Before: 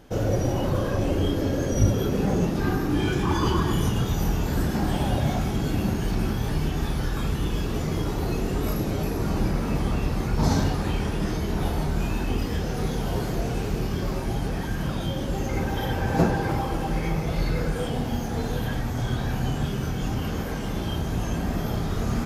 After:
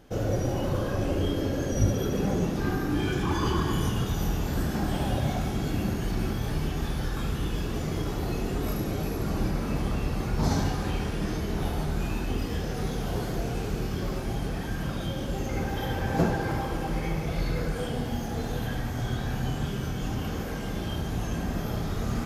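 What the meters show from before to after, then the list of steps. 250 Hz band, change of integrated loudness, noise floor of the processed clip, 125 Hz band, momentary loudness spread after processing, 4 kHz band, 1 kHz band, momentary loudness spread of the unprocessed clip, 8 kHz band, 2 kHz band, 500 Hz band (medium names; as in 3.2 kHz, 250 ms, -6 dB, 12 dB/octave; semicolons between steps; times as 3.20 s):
-3.5 dB, -3.5 dB, -32 dBFS, -3.5 dB, 5 LU, -2.5 dB, -3.5 dB, 5 LU, -2.5 dB, -2.5 dB, -3.0 dB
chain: band-stop 940 Hz, Q 23; on a send: thinning echo 72 ms, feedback 80%, level -10.5 dB; on the sum: trim -3.5 dB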